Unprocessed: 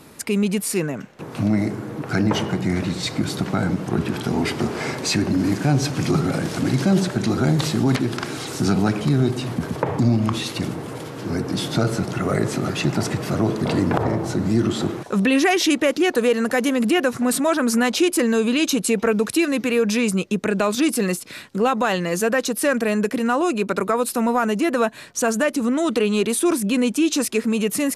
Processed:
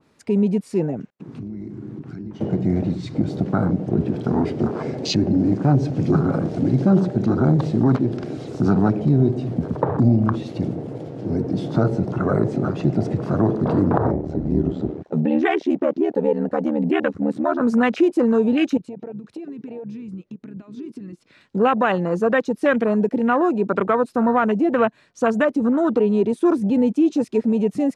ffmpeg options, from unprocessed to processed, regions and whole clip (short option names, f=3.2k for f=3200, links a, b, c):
-filter_complex "[0:a]asettb=1/sr,asplit=3[a][b][c];[a]atrim=end=1.104[d];[b]atrim=start=1.1:end=2.41,asetpts=PTS-STARTPTS,afade=t=in:d=0.004:c=qsin,afade=t=out:st=1.306:d=0.004:c=qsin,highpass=93,agate=range=-28dB:threshold=-41dB:ratio=16:release=100:detection=peak,acompressor=threshold=-29dB:ratio=16:attack=3.2:release=140:knee=1:detection=peak[e];[c]atrim=start=2.406[f];[d][e]acrossfade=d=0.004:c1=hsin:c2=qsin[g];[g][f]acrossfade=d=0.004:c1=qsin:c2=hsin,asettb=1/sr,asplit=3[h][i][j];[h]atrim=end=14.124[k];[i]atrim=start=14.12:end=17.61,asetpts=PTS-STARTPTS,afade=t=in:d=0.004:c=qsin,afade=t=out:st=3.486:d=0.004:c=qsin,lowpass=f=3.1k:p=1,aeval=exprs='val(0)*sin(2*PI*38*n/s)':c=same[l];[j]atrim=start=17.606[m];[k][l]acrossfade=d=0.004:c1=hsin:c2=qsin[n];[n][m]acrossfade=d=0.004:c1=qsin:c2=hsin,asettb=1/sr,asplit=3[o][p][q];[o]atrim=end=18.774[r];[p]atrim=start=18.77:end=21.41,asetpts=PTS-STARTPTS,afade=t=in:d=0.004:c=qsin,afade=t=out:st=2.636:d=0.004:c=qsin,highshelf=f=4.9k:g=-11.5,acompressor=threshold=-31dB:ratio=10:attack=3.2:release=140:knee=1:detection=peak[s];[q]atrim=start=21.406[t];[r][s]acrossfade=d=0.004:c1=hsin:c2=qsin[u];[u][t]acrossfade=d=0.004:c1=qsin:c2=hsin,lowpass=6.2k,afwtdn=0.0562,adynamicequalizer=threshold=0.0141:dfrequency=2300:dqfactor=0.7:tfrequency=2300:tqfactor=0.7:attack=5:release=100:ratio=0.375:range=2:mode=cutabove:tftype=highshelf,volume=2dB"